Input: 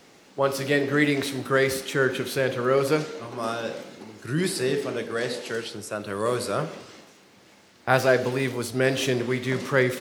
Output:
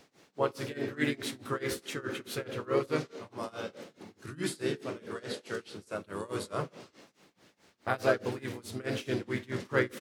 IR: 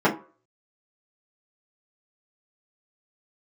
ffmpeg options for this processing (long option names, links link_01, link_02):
-filter_complex "[0:a]tremolo=f=4.7:d=0.94,asplit=2[link_01][link_02];[link_02]asetrate=37084,aresample=44100,atempo=1.18921,volume=-5dB[link_03];[link_01][link_03]amix=inputs=2:normalize=0,volume=-6.5dB"